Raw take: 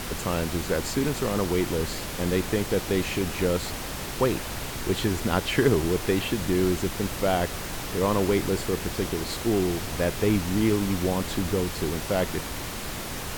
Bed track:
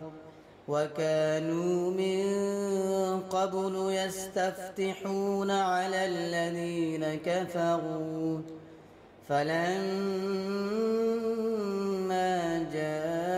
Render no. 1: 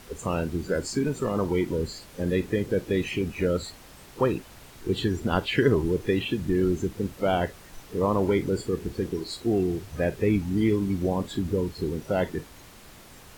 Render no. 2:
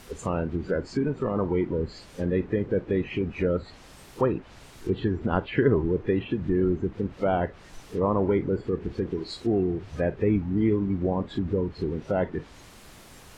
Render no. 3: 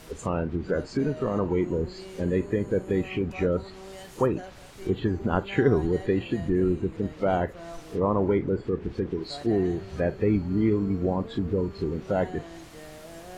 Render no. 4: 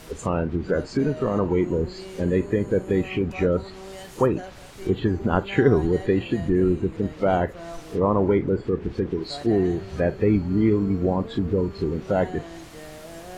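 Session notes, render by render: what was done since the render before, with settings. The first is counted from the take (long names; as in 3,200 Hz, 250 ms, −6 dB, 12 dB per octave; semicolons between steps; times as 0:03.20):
noise reduction from a noise print 15 dB
treble cut that deepens with the level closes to 1,700 Hz, closed at −23.5 dBFS
mix in bed track −13.5 dB
level +3.5 dB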